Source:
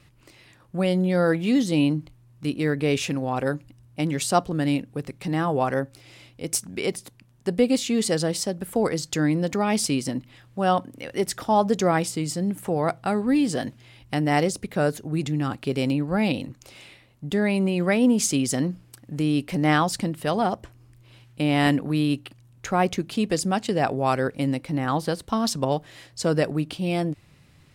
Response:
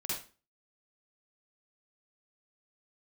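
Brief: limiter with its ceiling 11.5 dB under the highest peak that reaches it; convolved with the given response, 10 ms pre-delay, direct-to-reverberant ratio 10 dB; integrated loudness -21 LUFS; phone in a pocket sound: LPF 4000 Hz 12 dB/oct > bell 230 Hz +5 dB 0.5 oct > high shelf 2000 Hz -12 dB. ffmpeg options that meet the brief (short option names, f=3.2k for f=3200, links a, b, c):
-filter_complex "[0:a]alimiter=limit=-17.5dB:level=0:latency=1,asplit=2[a][b];[1:a]atrim=start_sample=2205,adelay=10[c];[b][c]afir=irnorm=-1:irlink=0,volume=-12.5dB[d];[a][d]amix=inputs=2:normalize=0,lowpass=4k,equalizer=f=230:t=o:w=0.5:g=5,highshelf=f=2k:g=-12,volume=5.5dB"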